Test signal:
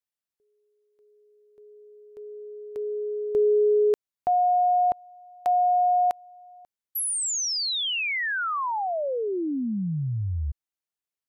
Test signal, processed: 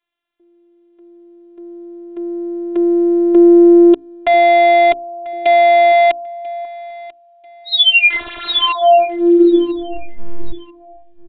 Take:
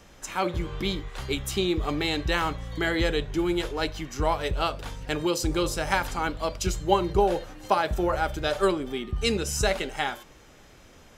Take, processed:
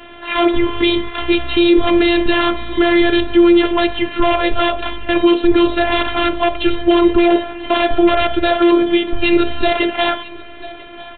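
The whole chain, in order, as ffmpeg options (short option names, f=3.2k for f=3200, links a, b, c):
-filter_complex "[0:a]highpass=f=57:w=0.5412,highpass=f=57:w=1.3066,bandreject=f=60:t=h:w=6,bandreject=f=120:t=h:w=6,bandreject=f=180:t=h:w=6,bandreject=f=240:t=h:w=6,bandreject=f=300:t=h:w=6,bandreject=f=360:t=h:w=6,acrossover=split=710|2900[a][b][c];[b]aeval=exprs='(mod(22.4*val(0)+1,2)-1)/22.4':c=same[d];[a][d][c]amix=inputs=3:normalize=0,aresample=8000,aresample=44100,afftfilt=real='hypot(re,im)*cos(PI*b)':imag='0':win_size=512:overlap=0.75,aecho=1:1:991|1982:0.0841|0.0236,alimiter=level_in=22dB:limit=-1dB:release=50:level=0:latency=1,volume=-1dB"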